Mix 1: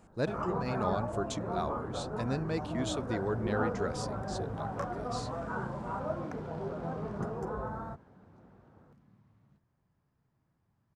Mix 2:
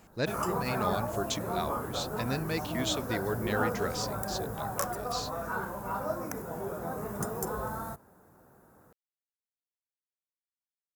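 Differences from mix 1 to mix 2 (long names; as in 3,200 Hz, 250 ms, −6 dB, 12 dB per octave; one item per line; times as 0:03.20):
speech: add flat-topped bell 3,500 Hz +8 dB 2.3 octaves
first sound: remove head-to-tape spacing loss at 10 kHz 32 dB
second sound: muted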